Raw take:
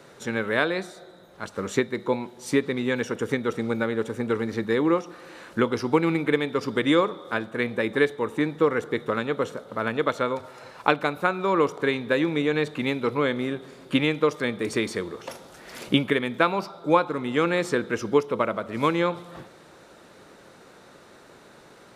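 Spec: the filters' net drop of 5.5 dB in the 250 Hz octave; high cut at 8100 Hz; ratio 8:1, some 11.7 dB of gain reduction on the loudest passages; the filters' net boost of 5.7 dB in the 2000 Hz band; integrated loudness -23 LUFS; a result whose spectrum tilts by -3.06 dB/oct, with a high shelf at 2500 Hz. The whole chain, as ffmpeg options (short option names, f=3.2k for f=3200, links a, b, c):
-af "lowpass=8.1k,equalizer=f=250:t=o:g=-7.5,equalizer=f=2k:t=o:g=8.5,highshelf=f=2.5k:g=-3,acompressor=threshold=-26dB:ratio=8,volume=9dB"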